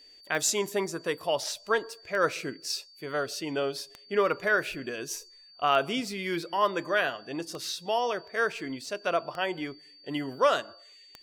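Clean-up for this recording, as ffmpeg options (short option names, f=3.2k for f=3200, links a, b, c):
-af "adeclick=t=4,bandreject=f=4.6k:w=30"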